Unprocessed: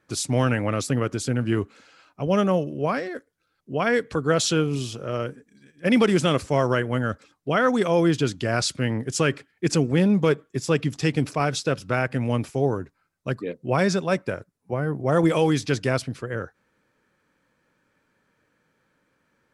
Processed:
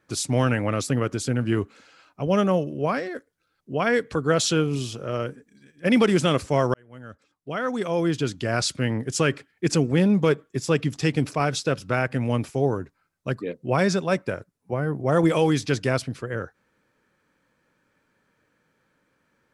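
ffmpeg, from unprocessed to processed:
-filter_complex "[0:a]asplit=2[s0][s1];[s0]atrim=end=6.74,asetpts=PTS-STARTPTS,afade=t=out:st=6.736:d=0.004:c=hsin[s2];[s1]atrim=start=6.74,asetpts=PTS-STARTPTS,afade=t=in:d=1.96[s3];[s2][s3]concat=n=2:v=0:a=1"

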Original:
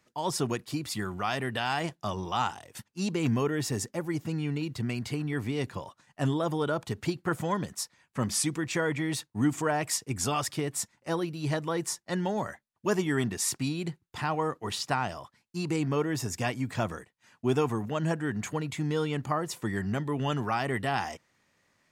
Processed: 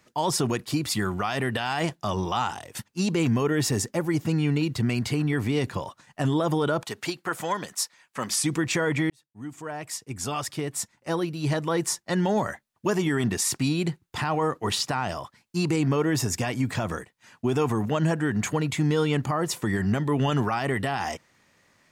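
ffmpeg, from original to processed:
-filter_complex "[0:a]asettb=1/sr,asplit=3[s0][s1][s2];[s0]atrim=end=6.834[s3];[s1]atrim=start=6.83:end=8.39,asetpts=PTS-STARTPTS,afade=t=in:d=0.004:c=qsin,afade=t=out:st=1.556:d=0.004:c=qsin,highpass=f=810:p=1[s4];[s2]atrim=start=8.386[s5];[s3][s4]acrossfade=d=0.004:c1=hsin:c2=qsin[s6];[s6][s5]acrossfade=d=0.004:c1=qsin:c2=hsin,asplit=2[s7][s8];[s7]atrim=end=9.1,asetpts=PTS-STARTPTS,afade=t=out:st=9.096:d=0.004:c=hsin[s9];[s8]atrim=start=9.1,asetpts=PTS-STARTPTS,afade=t=in:d=3.25[s10];[s9][s10]concat=n=2:v=0:a=1,alimiter=limit=0.0708:level=0:latency=1:release=50,volume=2.37"

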